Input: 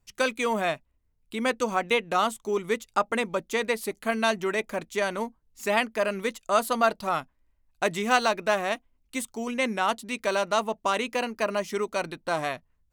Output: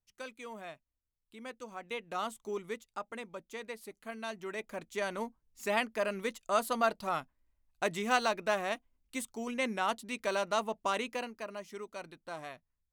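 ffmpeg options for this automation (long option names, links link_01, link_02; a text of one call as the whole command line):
ffmpeg -i in.wav -af "afade=type=in:start_time=1.74:duration=0.73:silence=0.334965,afade=type=out:start_time=2.47:duration=0.44:silence=0.473151,afade=type=in:start_time=4.27:duration=0.98:silence=0.334965,afade=type=out:start_time=10.98:duration=0.46:silence=0.375837" out.wav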